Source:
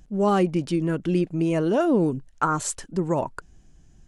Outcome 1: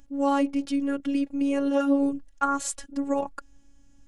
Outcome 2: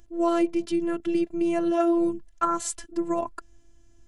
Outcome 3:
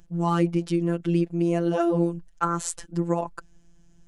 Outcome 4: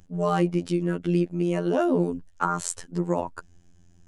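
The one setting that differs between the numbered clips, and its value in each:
phases set to zero, frequency: 280, 340, 170, 87 Hertz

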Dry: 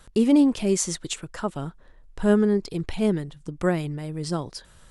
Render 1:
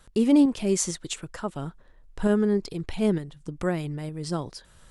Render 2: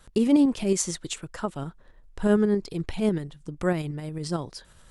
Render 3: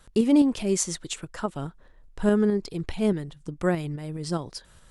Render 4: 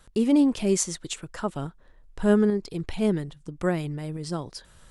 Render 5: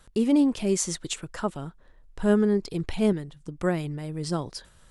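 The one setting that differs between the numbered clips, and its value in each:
shaped tremolo, speed: 2.2, 11, 4.8, 1.2, 0.64 Hertz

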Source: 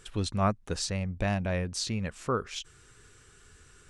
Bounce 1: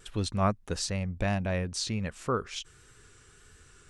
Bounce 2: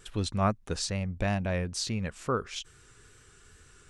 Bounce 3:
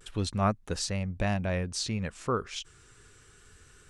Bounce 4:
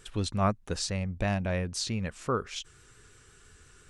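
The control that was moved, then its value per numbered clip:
pitch vibrato, speed: 1.5, 2.3, 0.31, 5.8 Hertz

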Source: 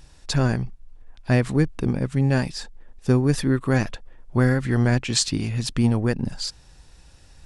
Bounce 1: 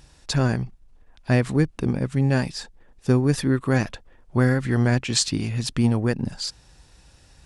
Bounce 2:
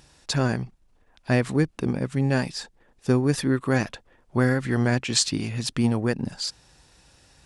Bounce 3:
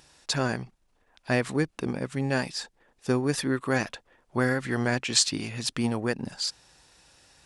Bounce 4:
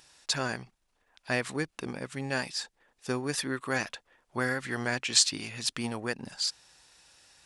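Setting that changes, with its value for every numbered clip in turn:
high-pass filter, corner frequency: 43, 160, 450, 1,200 Hertz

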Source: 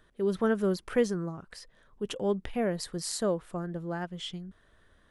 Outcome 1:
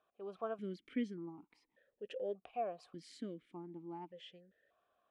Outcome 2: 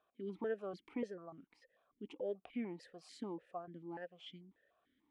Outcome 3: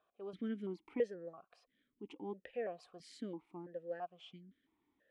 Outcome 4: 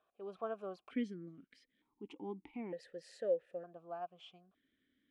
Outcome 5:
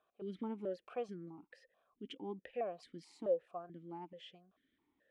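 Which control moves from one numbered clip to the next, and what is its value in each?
formant filter that steps through the vowels, speed: 1.7, 6.8, 3, 1.1, 4.6 Hertz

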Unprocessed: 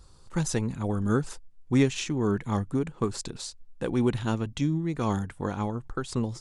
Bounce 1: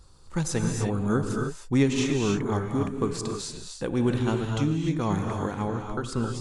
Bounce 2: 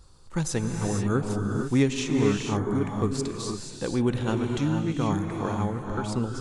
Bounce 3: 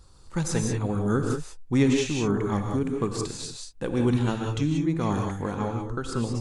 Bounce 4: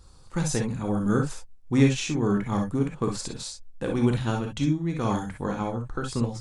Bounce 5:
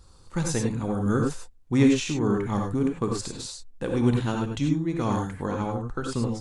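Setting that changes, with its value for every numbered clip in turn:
reverb whose tail is shaped and stops, gate: 330, 510, 210, 80, 120 milliseconds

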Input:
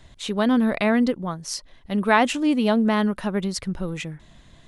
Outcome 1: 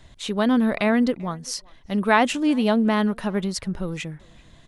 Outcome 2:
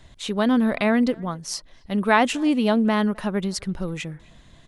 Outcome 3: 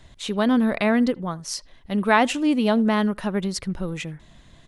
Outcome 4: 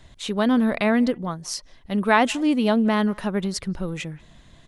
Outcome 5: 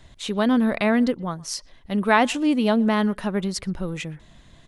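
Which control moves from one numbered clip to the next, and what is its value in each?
far-end echo of a speakerphone, delay time: 390, 260, 80, 180, 120 milliseconds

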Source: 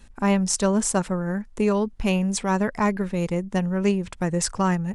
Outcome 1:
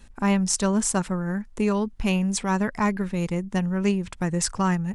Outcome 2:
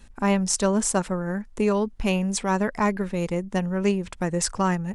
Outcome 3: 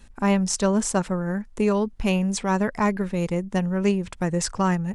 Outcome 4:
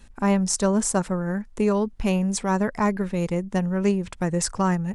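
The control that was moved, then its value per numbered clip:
dynamic equaliser, frequency: 530, 120, 10,000, 2,900 Hertz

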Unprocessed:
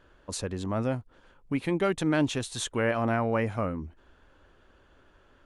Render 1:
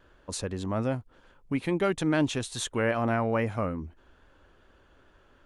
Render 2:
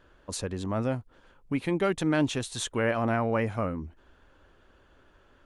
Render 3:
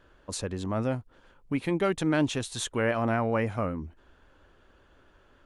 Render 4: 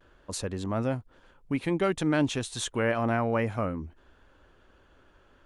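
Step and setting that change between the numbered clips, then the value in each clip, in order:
pitch vibrato, speed: 2.4, 15, 7.3, 0.35 Hertz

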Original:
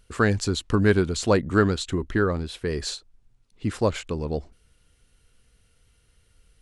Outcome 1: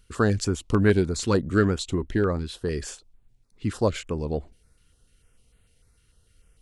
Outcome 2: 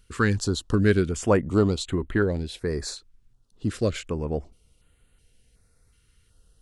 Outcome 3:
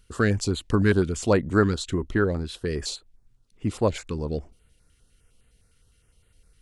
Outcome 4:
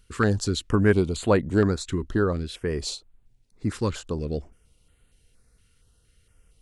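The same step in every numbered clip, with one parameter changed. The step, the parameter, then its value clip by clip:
notch on a step sequencer, speed: 6.7, 2.7, 9.8, 4.3 Hertz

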